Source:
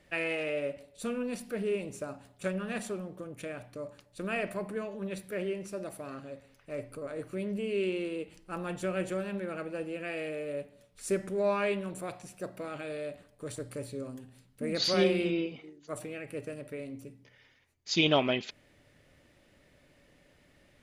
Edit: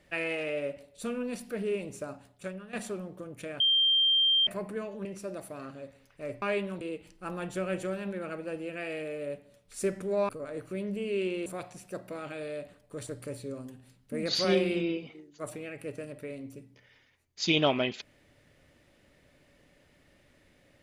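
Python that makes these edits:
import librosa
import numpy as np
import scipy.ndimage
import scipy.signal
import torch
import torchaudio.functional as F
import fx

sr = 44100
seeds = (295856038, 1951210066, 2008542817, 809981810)

y = fx.edit(x, sr, fx.fade_out_to(start_s=2.13, length_s=0.6, floor_db=-14.0),
    fx.bleep(start_s=3.6, length_s=0.87, hz=3170.0, db=-21.0),
    fx.cut(start_s=5.05, length_s=0.49),
    fx.swap(start_s=6.91, length_s=1.17, other_s=11.56, other_length_s=0.39), tone=tone)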